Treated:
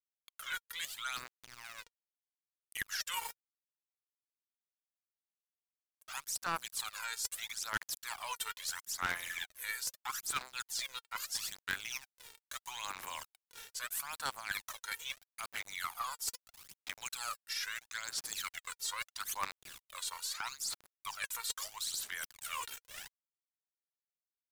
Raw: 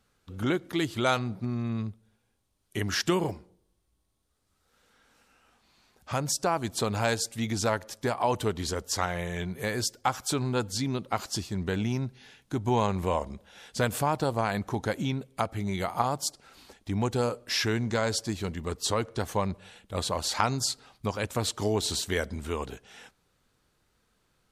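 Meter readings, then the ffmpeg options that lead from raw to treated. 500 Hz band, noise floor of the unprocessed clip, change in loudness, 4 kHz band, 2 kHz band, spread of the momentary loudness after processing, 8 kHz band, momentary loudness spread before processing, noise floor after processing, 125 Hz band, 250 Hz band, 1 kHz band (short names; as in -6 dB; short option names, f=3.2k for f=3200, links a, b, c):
-27.5 dB, -73 dBFS, -9.5 dB, -6.0 dB, -4.5 dB, 11 LU, -4.5 dB, 8 LU, under -85 dBFS, -31.0 dB, -31.0 dB, -11.5 dB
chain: -filter_complex "[0:a]aemphasis=mode=production:type=50fm,agate=range=-33dB:threshold=-57dB:ratio=3:detection=peak,highpass=f=1.3k:w=0.5412,highpass=f=1.3k:w=1.3066,highshelf=f=2.1k:g=-6,acrossover=split=1800[a][b];[b]alimiter=limit=-24dB:level=0:latency=1:release=68[c];[a][c]amix=inputs=2:normalize=0,asplit=2[d][e];[e]adelay=310,highpass=300,lowpass=3.4k,asoftclip=type=hard:threshold=-24.5dB,volume=-28dB[f];[d][f]amix=inputs=2:normalize=0,aeval=exprs='val(0)*gte(abs(val(0)),0.00422)':c=same,areverse,acompressor=threshold=-43dB:ratio=6,areverse,aphaser=in_gain=1:out_gain=1:delay=2.2:decay=0.64:speed=0.77:type=sinusoidal,aeval=exprs='0.0473*(cos(1*acos(clip(val(0)/0.0473,-1,1)))-cos(1*PI/2))+0.0133*(cos(4*acos(clip(val(0)/0.0473,-1,1)))-cos(4*PI/2))+0.0075*(cos(6*acos(clip(val(0)/0.0473,-1,1)))-cos(6*PI/2))':c=same,volume=4.5dB"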